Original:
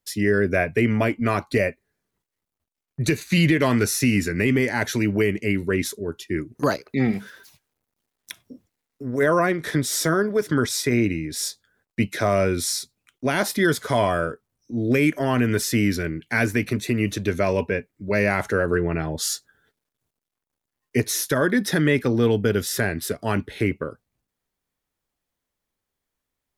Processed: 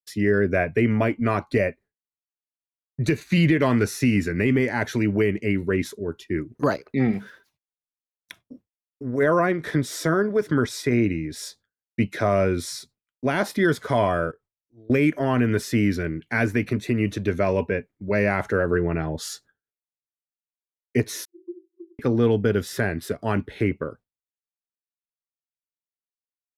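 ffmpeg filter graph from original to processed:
-filter_complex "[0:a]asettb=1/sr,asplit=3[a][b][c];[a]atrim=end=14.314[d];[b]atrim=start=14.31:end=14.9,asetpts=PTS-STARTPTS,afade=t=in:d=0.004:c=qsin,afade=t=out:st=0.586:d=0.004:c=qsin,equalizer=f=220:w=2.2:g=-10.5,acompressor=threshold=-56dB:ratio=2:attack=3.2:release=140:knee=1:detection=peak,asplit=2[e][f];[f]adelay=23,volume=-9dB[g];[e][g]amix=inputs=2:normalize=0,atrim=end_sample=26019[h];[c]atrim=start=14.896[i];[d][h]acrossfade=d=0.004:c1=hsin:c2=qsin[j];[j][i]acrossfade=d=0.004:c1=qsin:c2=hsin,asettb=1/sr,asplit=3[k][l][m];[k]atrim=end=21.254[n];[l]atrim=start=21.25:end=21.99,asetpts=PTS-STARTPTS,afade=t=in:d=0.004:c=qsin,afade=t=out:st=0.736:d=0.004:c=qsin,volume=28dB,asoftclip=hard,volume=-28dB,asuperpass=centerf=350:order=20:qfactor=6.7[o];[m]atrim=start=21.986[p];[n][o]acrossfade=d=0.004:c1=hsin:c2=qsin[q];[q][p]acrossfade=d=0.004:c1=qsin:c2=hsin,agate=range=-33dB:threshold=-40dB:ratio=3:detection=peak,highshelf=f=3.8k:g=-11.5"

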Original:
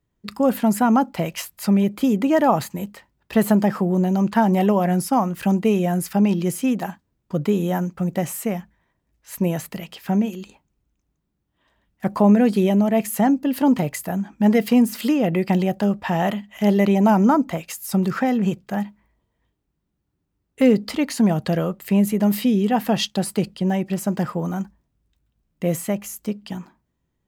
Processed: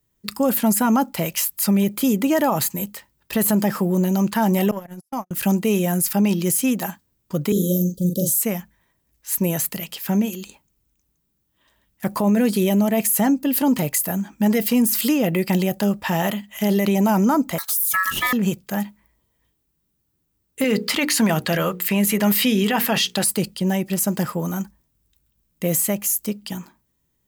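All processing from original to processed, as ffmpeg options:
-filter_complex "[0:a]asettb=1/sr,asplit=3[a][b][c];[a]atrim=end=4.714[d];[b]atrim=start=4.71:end=5.31,asetpts=PTS-STARTPTS,afade=t=in:d=0.004:c=qsin,afade=t=out:st=0.596:d=0.004:c=qsin,agate=range=-58dB:threshold=-17dB:ratio=16:release=100:detection=peak,acompressor=threshold=-25dB:ratio=2:attack=3.2:release=140:knee=1:detection=peak[e];[c]atrim=start=5.306[f];[d][e]acrossfade=d=0.004:c1=hsin:c2=qsin[g];[g][f]acrossfade=d=0.004:c1=qsin:c2=hsin,asettb=1/sr,asplit=3[h][i][j];[h]atrim=end=7.524[k];[i]atrim=start=7.52:end=8.42,asetpts=PTS-STARTPTS,afade=t=in:d=0.004:c=qsin,afade=t=out:st=0.896:d=0.004:c=qsin,asuperstop=centerf=1400:order=20:qfactor=0.51,asplit=2[l][m];[m]adelay=39,volume=-4dB[n];[l][n]amix=inputs=2:normalize=0,atrim=end_sample=39690[o];[j]atrim=start=8.416[p];[k][o]acrossfade=d=0.004:c1=hsin:c2=qsin[q];[q][p]acrossfade=d=0.004:c1=qsin:c2=hsin,asettb=1/sr,asplit=3[r][s][t];[r]atrim=end=17.584[u];[s]atrim=start=17.58:end=18.33,asetpts=PTS-STARTPTS,afade=t=in:d=0.004:c=qsin,afade=t=out:st=0.746:d=0.004:c=qsin,aemphasis=mode=production:type=50kf,aeval=exprs='val(0)*sin(2*PI*1500*n/s)':c=same[v];[t]atrim=start=18.326[w];[u][v]acrossfade=d=0.004:c1=hsin:c2=qsin[x];[x][w]acrossfade=d=0.004:c1=qsin:c2=hsin,asettb=1/sr,asplit=3[y][z][aa];[y]atrim=end=20.644[ab];[z]atrim=start=20.64:end=23.24,asetpts=PTS-STARTPTS,afade=t=in:d=0.004:c=qsin,afade=t=out:st=2.596:d=0.004:c=qsin,equalizer=f=1.9k:t=o:w=2.6:g=10.5,bandreject=f=60:t=h:w=6,bandreject=f=120:t=h:w=6,bandreject=f=180:t=h:w=6,bandreject=f=240:t=h:w=6,bandreject=f=300:t=h:w=6,bandreject=f=360:t=h:w=6,bandreject=f=420:t=h:w=6,bandreject=f=480:t=h:w=6[ac];[aa]atrim=start=23.236[ad];[ab][ac]acrossfade=d=0.004:c1=hsin:c2=qsin[ae];[ae][ad]acrossfade=d=0.004:c1=qsin:c2=hsin,aemphasis=mode=production:type=75kf,bandreject=f=730:w=12,alimiter=limit=-10.5dB:level=0:latency=1:release=22"

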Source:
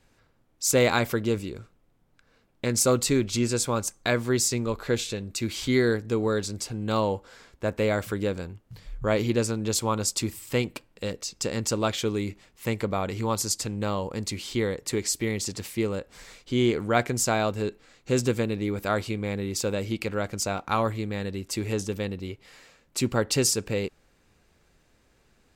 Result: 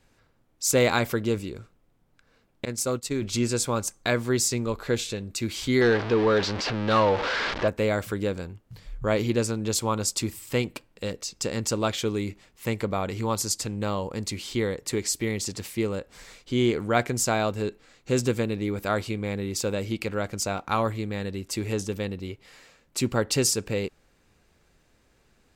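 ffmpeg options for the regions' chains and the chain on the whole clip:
-filter_complex "[0:a]asettb=1/sr,asplit=3[a][b][c];[a]atrim=end=2.654[d];[b]atrim=start=2.65:end=3.22,asetpts=PTS-STARTPTS,afade=t=in:d=0.004:c=qsin,afade=t=out:st=0.566:d=0.004:c=qsin,agate=range=-33dB:threshold=-20dB:ratio=3:release=100:detection=peak,acompressor=threshold=-24dB:ratio=2.5:attack=3.2:release=140:knee=1:detection=peak[e];[c]atrim=start=3.216[f];[d][e]acrossfade=d=0.004:c1=hsin:c2=qsin[g];[g][f]acrossfade=d=0.004:c1=qsin:c2=hsin,asettb=1/sr,asplit=3[h][i][j];[h]atrim=end=5.814[k];[i]atrim=start=5.81:end=7.68,asetpts=PTS-STARTPTS,afade=t=in:d=0.004:c=qsin,afade=t=out:st=1.866:d=0.004:c=qsin,aeval=exprs='val(0)+0.5*0.0447*sgn(val(0))':c=same,lowpass=f=5k:w=0.5412,lowpass=f=5k:w=1.3066,asplit=2[l][m];[m]highpass=f=720:p=1,volume=14dB,asoftclip=type=tanh:threshold=-11dB[n];[l][n]amix=inputs=2:normalize=0,lowpass=f=3.1k:p=1,volume=-6dB[o];[j]atrim=start=7.676[p];[k][o]acrossfade=d=0.004:c1=hsin:c2=qsin[q];[q][p]acrossfade=d=0.004:c1=qsin:c2=hsin"

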